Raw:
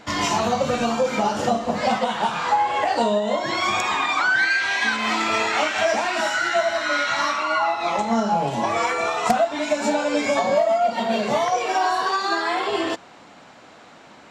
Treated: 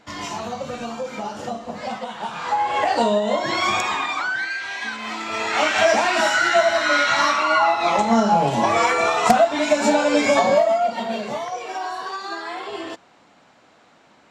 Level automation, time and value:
0:02.17 −8 dB
0:02.78 +1.5 dB
0:03.72 +1.5 dB
0:04.48 −7 dB
0:05.26 −7 dB
0:05.70 +4 dB
0:10.44 +4 dB
0:11.45 −7.5 dB

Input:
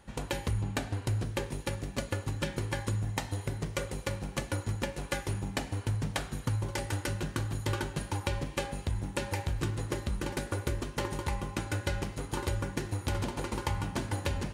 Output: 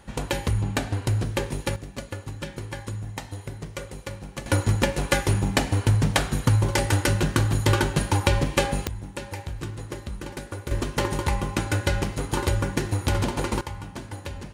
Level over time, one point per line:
+7 dB
from 0:01.76 −1 dB
from 0:04.46 +11.5 dB
from 0:08.87 −1 dB
from 0:10.71 +8.5 dB
from 0:13.61 −3 dB

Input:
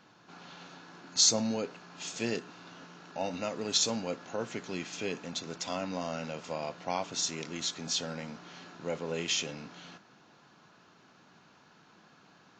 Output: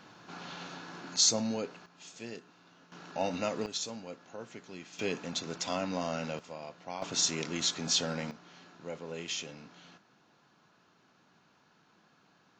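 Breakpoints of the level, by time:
+5.5 dB
from 0:01.16 −1.5 dB
from 0:01.86 −10.5 dB
from 0:02.92 +2 dB
from 0:03.66 −9 dB
from 0:04.99 +1.5 dB
from 0:06.39 −7.5 dB
from 0:07.02 +3.5 dB
from 0:08.31 −6 dB

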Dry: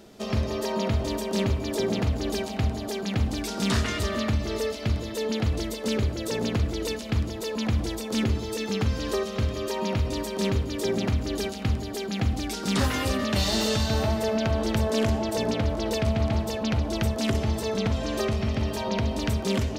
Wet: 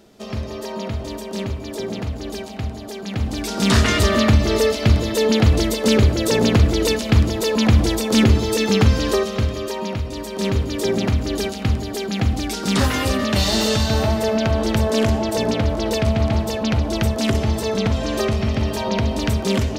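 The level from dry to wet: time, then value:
0:02.96 −1 dB
0:03.91 +11 dB
0:08.86 +11 dB
0:10.11 −0.5 dB
0:10.61 +6 dB

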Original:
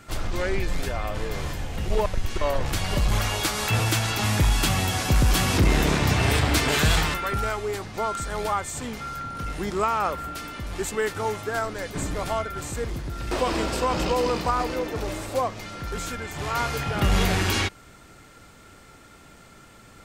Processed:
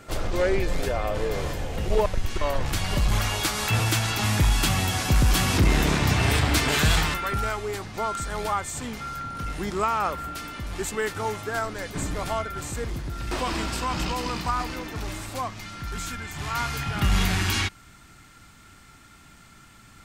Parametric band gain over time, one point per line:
parametric band 500 Hz 0.97 octaves
0:01.71 +7 dB
0:02.44 −3 dB
0:13.10 −3 dB
0:13.71 −12.5 dB

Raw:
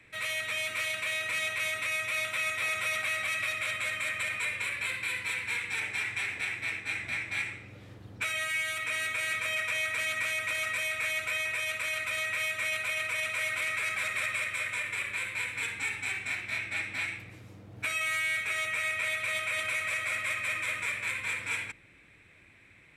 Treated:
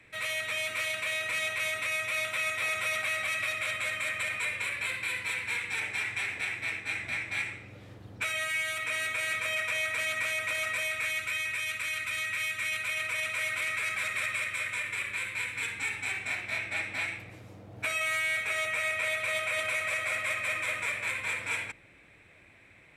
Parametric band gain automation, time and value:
parametric band 660 Hz 1.1 octaves
0:10.82 +2.5 dB
0:11.34 −9 dB
0:12.66 −9 dB
0:13.10 −1.5 dB
0:15.63 −1.5 dB
0:16.36 +6.5 dB

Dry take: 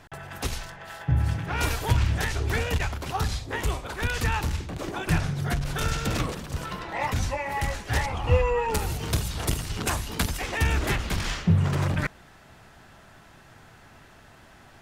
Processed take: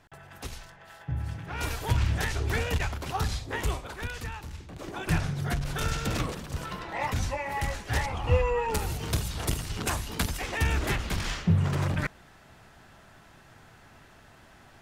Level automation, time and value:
0:01.31 −9 dB
0:02.08 −2 dB
0:03.73 −2 dB
0:04.43 −14 dB
0:05.08 −2.5 dB

